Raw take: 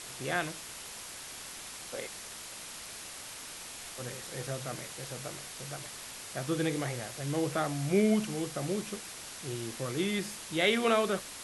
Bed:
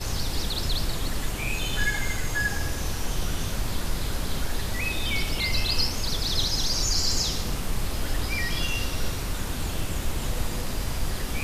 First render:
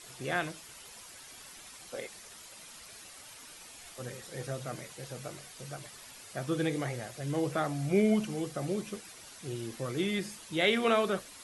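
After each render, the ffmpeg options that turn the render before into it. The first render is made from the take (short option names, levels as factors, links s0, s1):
-af "afftdn=nr=9:nf=-45"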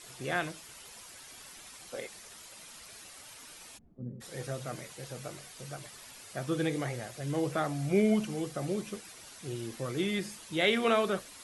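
-filter_complex "[0:a]asplit=3[s0][s1][s2];[s0]afade=t=out:st=3.77:d=0.02[s3];[s1]lowpass=f=230:t=q:w=2.6,afade=t=in:st=3.77:d=0.02,afade=t=out:st=4.2:d=0.02[s4];[s2]afade=t=in:st=4.2:d=0.02[s5];[s3][s4][s5]amix=inputs=3:normalize=0"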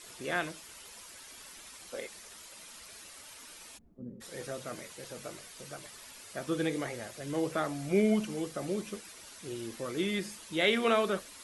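-af "equalizer=f=130:t=o:w=0.35:g=-12,bandreject=f=750:w=14"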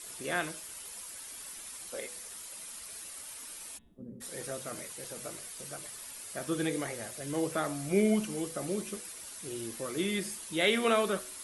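-af "equalizer=f=10000:t=o:w=0.7:g=10,bandreject=f=124.1:t=h:w=4,bandreject=f=248.2:t=h:w=4,bandreject=f=372.3:t=h:w=4,bandreject=f=496.4:t=h:w=4,bandreject=f=620.5:t=h:w=4,bandreject=f=744.6:t=h:w=4,bandreject=f=868.7:t=h:w=4,bandreject=f=992.8:t=h:w=4,bandreject=f=1116.9:t=h:w=4,bandreject=f=1241:t=h:w=4,bandreject=f=1365.1:t=h:w=4,bandreject=f=1489.2:t=h:w=4,bandreject=f=1613.3:t=h:w=4,bandreject=f=1737.4:t=h:w=4,bandreject=f=1861.5:t=h:w=4,bandreject=f=1985.6:t=h:w=4,bandreject=f=2109.7:t=h:w=4,bandreject=f=2233.8:t=h:w=4,bandreject=f=2357.9:t=h:w=4,bandreject=f=2482:t=h:w=4,bandreject=f=2606.1:t=h:w=4,bandreject=f=2730.2:t=h:w=4,bandreject=f=2854.3:t=h:w=4,bandreject=f=2978.4:t=h:w=4,bandreject=f=3102.5:t=h:w=4,bandreject=f=3226.6:t=h:w=4,bandreject=f=3350.7:t=h:w=4,bandreject=f=3474.8:t=h:w=4,bandreject=f=3598.9:t=h:w=4,bandreject=f=3723:t=h:w=4,bandreject=f=3847.1:t=h:w=4"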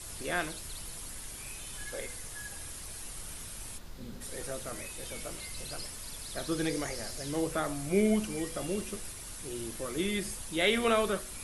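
-filter_complex "[1:a]volume=0.106[s0];[0:a][s0]amix=inputs=2:normalize=0"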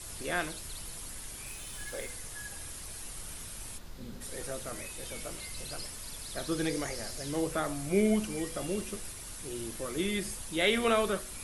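-filter_complex "[0:a]asettb=1/sr,asplit=3[s0][s1][s2];[s0]atrim=end=1.474[s3];[s1]atrim=start=1.47:end=2.1,asetpts=PTS-STARTPTS,afade=t=in:d=0.004:c=qsin,afade=t=out:st=0.626:d=0.004:c=qsin,aeval=exprs='val(0)*gte(abs(val(0)),0.00355)':c=same[s4];[s2]atrim=start=2.096[s5];[s3][s4]acrossfade=d=0.004:c1=hsin:c2=qsin[s6];[s6][s5]acrossfade=d=0.004:c1=qsin:c2=hsin"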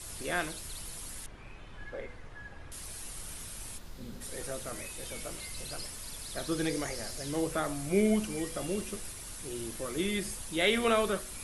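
-filter_complex "[0:a]asettb=1/sr,asplit=3[s0][s1][s2];[s0]atrim=end=1.264[s3];[s1]atrim=start=1.26:end=2.72,asetpts=PTS-STARTPTS,afade=t=in:d=0.004:c=qsin,afade=t=out:st=1.456:d=0.004:c=qsin,lowpass=1900[s4];[s2]atrim=start=2.716[s5];[s3][s4]acrossfade=d=0.004:c1=hsin:c2=qsin[s6];[s6][s5]acrossfade=d=0.004:c1=qsin:c2=hsin"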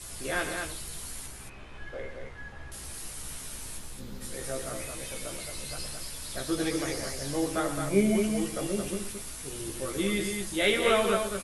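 -filter_complex "[0:a]asplit=2[s0][s1];[s1]adelay=15,volume=0.668[s2];[s0][s2]amix=inputs=2:normalize=0,aecho=1:1:119.5|218.7:0.282|0.562"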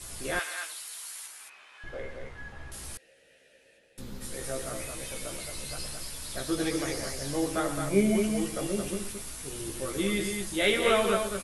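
-filter_complex "[0:a]asettb=1/sr,asplit=3[s0][s1][s2];[s0]atrim=end=0.394[s3];[s1]atrim=start=0.39:end=1.84,asetpts=PTS-STARTPTS,afade=t=in:d=0.004:c=qsin,afade=t=out:st=1.446:d=0.004:c=qsin,highpass=1100[s4];[s2]atrim=start=1.836[s5];[s3][s4]acrossfade=d=0.004:c1=hsin:c2=qsin[s6];[s6][s5]acrossfade=d=0.004:c1=qsin:c2=hsin,asettb=1/sr,asplit=3[s7][s8][s9];[s7]atrim=end=2.974[s10];[s8]atrim=start=2.97:end=3.98,asetpts=PTS-STARTPTS,afade=t=in:d=0.004:c=qsin,afade=t=out:st=1.006:d=0.004:c=qsin,asplit=3[s11][s12][s13];[s11]bandpass=f=530:t=q:w=8,volume=1[s14];[s12]bandpass=f=1840:t=q:w=8,volume=0.501[s15];[s13]bandpass=f=2480:t=q:w=8,volume=0.355[s16];[s14][s15][s16]amix=inputs=3:normalize=0[s17];[s9]atrim=start=3.976[s18];[s10][s17]acrossfade=d=0.004:c1=hsin:c2=qsin[s19];[s19][s18]acrossfade=d=0.004:c1=qsin:c2=hsin"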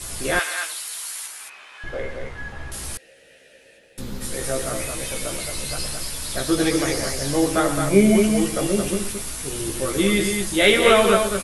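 -af "volume=2.99,alimiter=limit=0.708:level=0:latency=1"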